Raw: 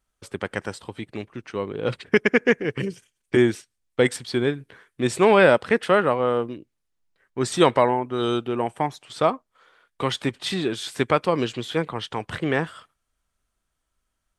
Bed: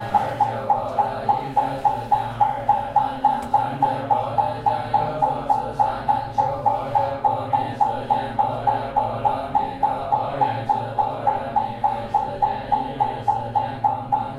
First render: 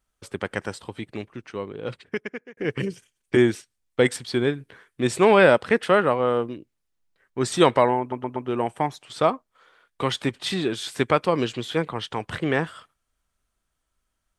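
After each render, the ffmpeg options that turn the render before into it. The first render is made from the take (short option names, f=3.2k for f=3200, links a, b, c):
-filter_complex "[0:a]asplit=6[a][b][c][d][e][f];[a]atrim=end=2.57,asetpts=PTS-STARTPTS,afade=t=out:st=1.12:d=1.45[g];[b]atrim=start=2.57:end=8.122,asetpts=PTS-STARTPTS,afade=t=in:d=0.004:c=hsin[h];[c]atrim=start=7.998:end=8.122[i];[d]atrim=start=7.998:end=8.122[j];[e]atrim=start=7.998:end=8.122[k];[f]atrim=start=8.478[l];[g][h]concat=n=2:v=0:a=1[m];[m][i]acrossfade=d=0.004:c1=hsin:c2=hsin[n];[n][j]acrossfade=d=0.004:c1=hsin:c2=hsin[o];[o][k]acrossfade=d=0.004:c1=hsin:c2=hsin[p];[p][l]acrossfade=d=0.004:c1=hsin:c2=hsin"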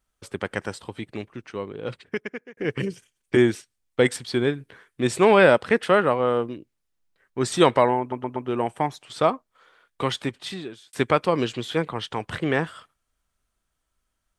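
-filter_complex "[0:a]asplit=2[a][b];[a]atrim=end=10.93,asetpts=PTS-STARTPTS,afade=t=out:st=10.02:d=0.91[c];[b]atrim=start=10.93,asetpts=PTS-STARTPTS,afade=t=in:d=0.004:c=hsin[d];[c][d]concat=n=2:v=0:a=1"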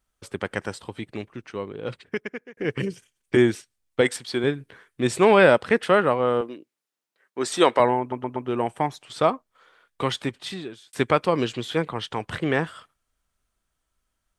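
-filter_complex "[0:a]asettb=1/sr,asplit=3[a][b][c];[a]atrim=end=4.014[d];[b]atrim=start=4.01:end=4.44,asetpts=PTS-STARTPTS,afade=t=in:d=0.004:c=qsin,afade=t=out:st=0.426:d=0.004:c=qsin,lowshelf=f=170:g=-11[e];[c]atrim=start=4.436[f];[d][e]acrossfade=d=0.004:c1=hsin:c2=qsin[g];[g][f]acrossfade=d=0.004:c1=qsin:c2=hsin,asettb=1/sr,asplit=3[h][i][j];[h]atrim=end=6.414[k];[i]atrim=start=6.41:end=7.8,asetpts=PTS-STARTPTS,afade=t=in:d=0.004:c=qsin,afade=t=out:st=1.386:d=0.004:c=qsin,highpass=300[l];[j]atrim=start=7.796[m];[k][l]acrossfade=d=0.004:c1=hsin:c2=qsin[n];[n][m]acrossfade=d=0.004:c1=qsin:c2=hsin"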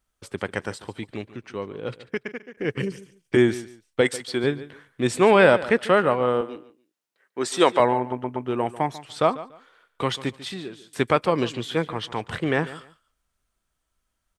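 -af "aecho=1:1:144|288:0.15|0.0329"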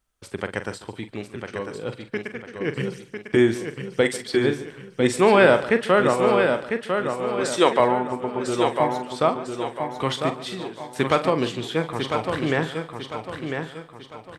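-filter_complex "[0:a]asplit=2[a][b];[b]adelay=44,volume=-11dB[c];[a][c]amix=inputs=2:normalize=0,asplit=2[d][e];[e]aecho=0:1:1000|2000|3000|4000|5000:0.501|0.19|0.0724|0.0275|0.0105[f];[d][f]amix=inputs=2:normalize=0"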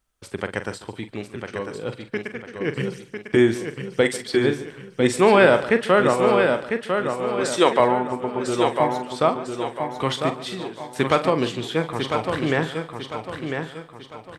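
-af "volume=1dB,alimiter=limit=-3dB:level=0:latency=1"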